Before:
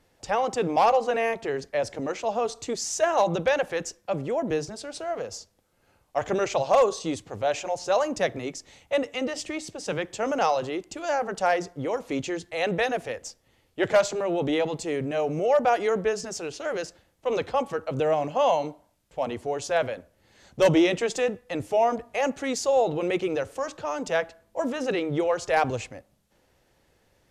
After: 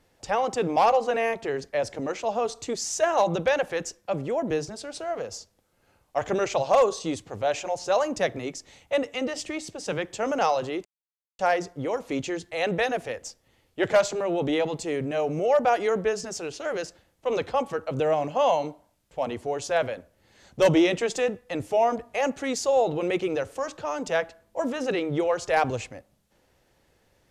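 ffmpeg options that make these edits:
-filter_complex "[0:a]asplit=3[s0][s1][s2];[s0]atrim=end=10.85,asetpts=PTS-STARTPTS,afade=t=out:st=10.846:d=0.004:c=hsin[s3];[s1]atrim=start=10.85:end=11.39,asetpts=PTS-STARTPTS,volume=0[s4];[s2]atrim=start=11.39,asetpts=PTS-STARTPTS,afade=t=in:d=0.004:c=hsin[s5];[s3][s4][s5]concat=n=3:v=0:a=1"

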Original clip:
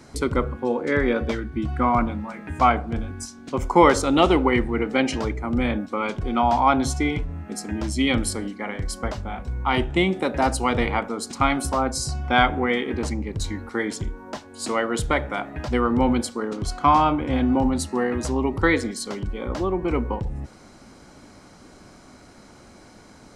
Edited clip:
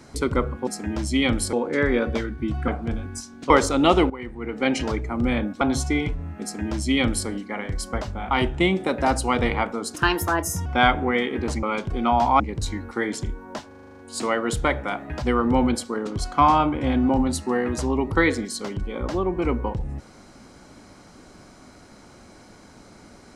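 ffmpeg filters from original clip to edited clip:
-filter_complex "[0:a]asplit=20[s0][s1][s2][s3][s4][s5][s6][s7][s8][s9][s10][s11][s12][s13][s14][s15][s16][s17][s18][s19];[s0]atrim=end=0.672[s20];[s1]atrim=start=7.518:end=8.382[s21];[s2]atrim=start=0.668:end=1.822[s22];[s3]atrim=start=2.728:end=3.552[s23];[s4]atrim=start=3.828:end=4.43,asetpts=PTS-STARTPTS,afade=t=out:st=0.598:d=0.004:c=hsin:silence=0.149624[s24];[s5]atrim=start=4.43:end=5.942,asetpts=PTS-STARTPTS,afade=t=in:d=0.61:c=qua:silence=0.149624[s25];[s6]atrim=start=6.708:end=9.412[s26];[s7]atrim=start=9.668:end=11.314[s27];[s8]atrim=start=11.31:end=12.21,asetpts=PTS-STARTPTS,asetrate=56007,aresample=44100[s28];[s9]atrim=start=12.206:end=13.182[s29];[s10]atrim=start=5.938:end=6.712[s30];[s11]atrim=start=13.178:end=14.492[s31];[s12]atrim=start=14.448:end=14.492[s32];[s13]atrim=start=14.448:end=14.492[s33];[s14]atrim=start=14.448:end=14.492[s34];[s15]atrim=start=14.448:end=14.492[s35];[s16]atrim=start=14.448:end=14.492[s36];[s17]atrim=start=14.448:end=14.492[s37];[s18]atrim=start=14.448:end=14.492[s38];[s19]atrim=start=14.448[s39];[s20][s21]acrossfade=d=0.004:c1=hsin:c2=hsin[s40];[s40][s22]acrossfade=d=0.004:c1=hsin:c2=hsin[s41];[s41][s23]acrossfade=d=0.004:c1=hsin:c2=hsin[s42];[s24][s25]concat=n=2:v=0:a=1[s43];[s42][s43]acrossfade=d=0.004:c1=hsin:c2=hsin[s44];[s44][s26]acrossfade=d=0.004:c1=hsin:c2=hsin[s45];[s45][s27]acrossfade=d=0.004:c1=hsin:c2=hsin[s46];[s46][s28]acrossfade=d=0.004:c1=hsin:c2=hsin[s47];[s47][s29]acrossfade=d=0.004:c1=hsin:c2=hsin[s48];[s48][s30]acrossfade=d=0.004:c1=hsin:c2=hsin[s49];[s49][s31]acrossfade=d=0.004:c1=hsin:c2=hsin[s50];[s50][s32]acrossfade=d=0.004:c1=hsin:c2=hsin[s51];[s51][s33]acrossfade=d=0.004:c1=hsin:c2=hsin[s52];[s52][s34]acrossfade=d=0.004:c1=hsin:c2=hsin[s53];[s53][s35]acrossfade=d=0.004:c1=hsin:c2=hsin[s54];[s54][s36]acrossfade=d=0.004:c1=hsin:c2=hsin[s55];[s55][s37]acrossfade=d=0.004:c1=hsin:c2=hsin[s56];[s56][s38]acrossfade=d=0.004:c1=hsin:c2=hsin[s57];[s57][s39]acrossfade=d=0.004:c1=hsin:c2=hsin"

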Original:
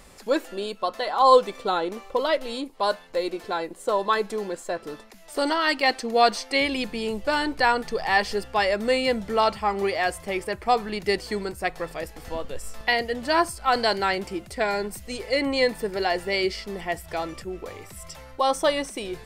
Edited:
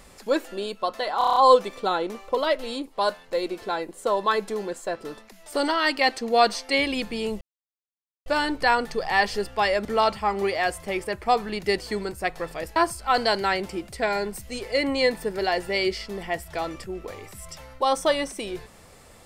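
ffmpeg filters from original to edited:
-filter_complex "[0:a]asplit=10[s0][s1][s2][s3][s4][s5][s6][s7][s8][s9];[s0]atrim=end=1.212[s10];[s1]atrim=start=1.178:end=1.212[s11];[s2]atrim=start=1.178:end=1.212[s12];[s3]atrim=start=1.178:end=1.212[s13];[s4]atrim=start=1.178:end=1.212[s14];[s5]atrim=start=1.178:end=1.212[s15];[s6]atrim=start=1.178:end=7.23,asetpts=PTS-STARTPTS,afade=t=out:st=6.048:d=0.004:c=hsin,apad=pad_dur=0.85[s16];[s7]atrim=start=7.23:end=8.822,asetpts=PTS-STARTPTS,afade=t=in:d=0.004:c=hsin[s17];[s8]atrim=start=9.248:end=12.162[s18];[s9]atrim=start=13.338[s19];[s10][s11]acrossfade=d=0.004:c1=hsin:c2=hsin[s20];[s20][s12]acrossfade=d=0.004:c1=hsin:c2=hsin[s21];[s21][s13]acrossfade=d=0.004:c1=hsin:c2=hsin[s22];[s22][s14]acrossfade=d=0.004:c1=hsin:c2=hsin[s23];[s23][s15]acrossfade=d=0.004:c1=hsin:c2=hsin[s24];[s16][s17]concat=n=2:v=0:a=1[s25];[s24][s25]acrossfade=d=0.004:c1=hsin:c2=hsin[s26];[s26][s18]acrossfade=d=0.004:c1=hsin:c2=hsin[s27];[s27][s19]acrossfade=d=0.004:c1=hsin:c2=hsin"

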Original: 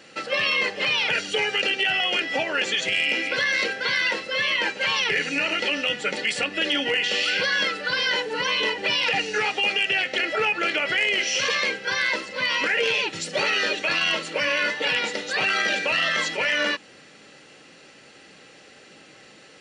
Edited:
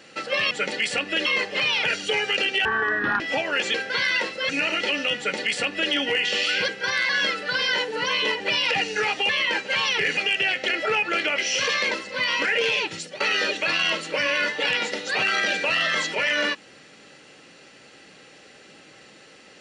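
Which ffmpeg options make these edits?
-filter_complex "[0:a]asplit=14[s0][s1][s2][s3][s4][s5][s6][s7][s8][s9][s10][s11][s12][s13];[s0]atrim=end=0.512[s14];[s1]atrim=start=5.958:end=6.712[s15];[s2]atrim=start=0.508:end=1.904[s16];[s3]atrim=start=1.9:end=2.22,asetpts=PTS-STARTPTS,asetrate=25578,aresample=44100,atrim=end_sample=24331,asetpts=PTS-STARTPTS[s17];[s4]atrim=start=2.216:end=2.762[s18];[s5]atrim=start=3.648:end=4.402[s19];[s6]atrim=start=5.278:end=7.472[s20];[s7]atrim=start=11.718:end=12.132[s21];[s8]atrim=start=7.468:end=9.672[s22];[s9]atrim=start=4.398:end=5.282[s23];[s10]atrim=start=9.668:end=10.882[s24];[s11]atrim=start=11.188:end=11.722[s25];[s12]atrim=start=12.128:end=13.42,asetpts=PTS-STARTPTS,afade=t=out:st=0.982:d=0.31:silence=0.1[s26];[s13]atrim=start=13.42,asetpts=PTS-STARTPTS,afade=t=in:d=0.004:c=hsin:silence=0.1[s27];[s14][s15]acrossfade=d=0.004:c1=hsin:c2=hsin[s28];[s28][s16]acrossfade=d=0.004:c1=hsin:c2=hsin[s29];[s29][s17]acrossfade=d=0.004:c1=hsin:c2=hsin[s30];[s30][s18]acrossfade=d=0.004:c1=hsin:c2=hsin[s31];[s31][s19]acrossfade=d=0.004:c1=hsin:c2=hsin[s32];[s32][s20]acrossfade=d=0.004:c1=hsin:c2=hsin[s33];[s33][s21]acrossfade=d=0.004:c1=hsin:c2=hsin[s34];[s34][s22]acrossfade=d=0.004:c1=hsin:c2=hsin[s35];[s35][s23]acrossfade=d=0.004:c1=hsin:c2=hsin[s36];[s36][s24]acrossfade=d=0.004:c1=hsin:c2=hsin[s37];[s37][s25]acrossfade=d=0.004:c1=hsin:c2=hsin[s38];[s26][s27]concat=n=2:v=0:a=1[s39];[s38][s39]acrossfade=d=0.004:c1=hsin:c2=hsin"

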